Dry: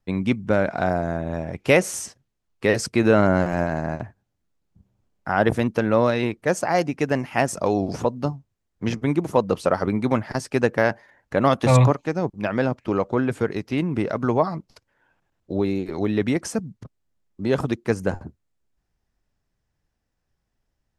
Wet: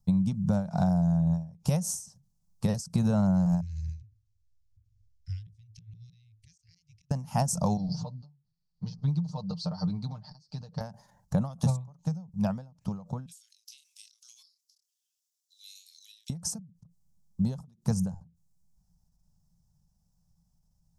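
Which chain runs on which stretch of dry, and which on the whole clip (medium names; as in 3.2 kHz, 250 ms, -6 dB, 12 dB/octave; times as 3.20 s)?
3.61–7.11 s: Chebyshev band-stop 110–2100 Hz, order 5 + inverted gate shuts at -23 dBFS, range -27 dB + distance through air 130 m
7.77–10.81 s: four-pole ladder low-pass 4.7 kHz, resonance 80% + comb 6.6 ms, depth 76%
13.26–16.30 s: steep high-pass 2.8 kHz + doubling 27 ms -8.5 dB
whole clip: FFT filter 120 Hz 0 dB, 170 Hz +10 dB, 330 Hz -26 dB, 510 Hz -15 dB, 870 Hz -7 dB, 2.1 kHz -28 dB, 5.6 kHz 0 dB; compression 12:1, threshold -28 dBFS; endings held to a fixed fall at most 130 dB/s; trim +6.5 dB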